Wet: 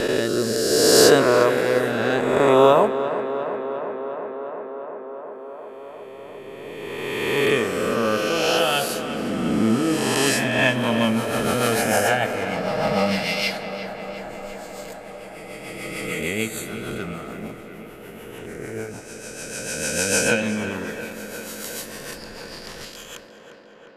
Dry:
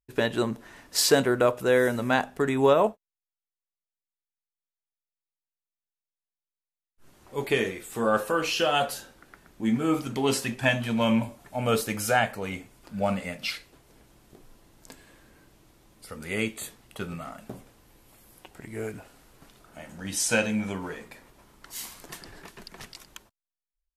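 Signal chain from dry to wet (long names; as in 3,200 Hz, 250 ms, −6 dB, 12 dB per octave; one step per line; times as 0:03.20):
peak hold with a rise ahead of every peak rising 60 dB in 2.96 s
rotating-speaker cabinet horn 0.65 Hz, later 6.7 Hz, at 0:10.13
0:12.46–0:16.20: comb filter 6.3 ms, depth 70%
tape delay 354 ms, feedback 87%, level −10.5 dB, low-pass 3,100 Hz
level +2 dB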